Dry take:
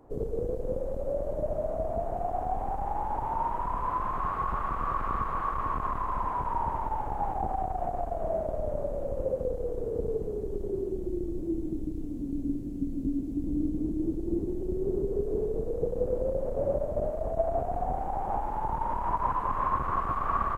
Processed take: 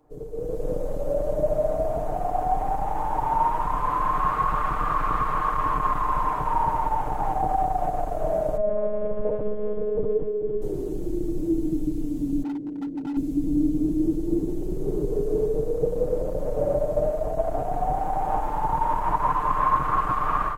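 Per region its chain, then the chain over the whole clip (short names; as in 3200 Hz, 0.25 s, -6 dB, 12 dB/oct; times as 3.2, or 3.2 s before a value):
8.57–10.62 LPF 2200 Hz + monotone LPC vocoder at 8 kHz 210 Hz
12.43–13.17 band-pass 420 Hz, Q 1.1 + overloaded stage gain 34 dB
whole clip: comb 6.6 ms; AGC gain up to 13 dB; high shelf 2100 Hz +7.5 dB; gain -8.5 dB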